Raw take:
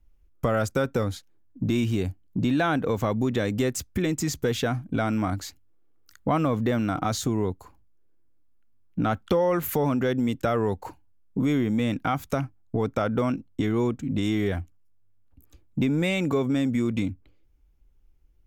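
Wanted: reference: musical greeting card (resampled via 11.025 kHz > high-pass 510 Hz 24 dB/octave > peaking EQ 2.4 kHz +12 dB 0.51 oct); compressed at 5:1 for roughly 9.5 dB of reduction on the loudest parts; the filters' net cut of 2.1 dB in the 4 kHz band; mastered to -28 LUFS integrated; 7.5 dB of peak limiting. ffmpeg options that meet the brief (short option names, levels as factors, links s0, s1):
-af "equalizer=f=4000:t=o:g=-6.5,acompressor=threshold=0.0282:ratio=5,alimiter=level_in=1.41:limit=0.0631:level=0:latency=1,volume=0.708,aresample=11025,aresample=44100,highpass=f=510:w=0.5412,highpass=f=510:w=1.3066,equalizer=f=2400:t=o:w=0.51:g=12,volume=4.73"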